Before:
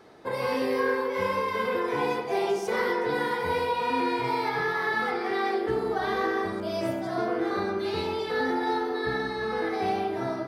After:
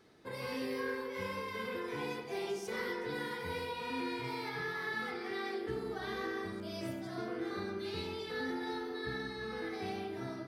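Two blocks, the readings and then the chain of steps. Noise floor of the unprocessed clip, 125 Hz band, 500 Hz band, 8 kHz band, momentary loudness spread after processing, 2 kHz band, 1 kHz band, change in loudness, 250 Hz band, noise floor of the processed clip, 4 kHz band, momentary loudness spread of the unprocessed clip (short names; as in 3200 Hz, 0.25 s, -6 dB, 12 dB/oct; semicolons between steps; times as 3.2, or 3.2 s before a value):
-33 dBFS, -7.0 dB, -12.0 dB, -6.5 dB, 3 LU, -9.5 dB, -14.5 dB, -11.5 dB, -9.0 dB, -44 dBFS, -7.0 dB, 3 LU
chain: bell 760 Hz -10 dB 1.9 oct; gain -6 dB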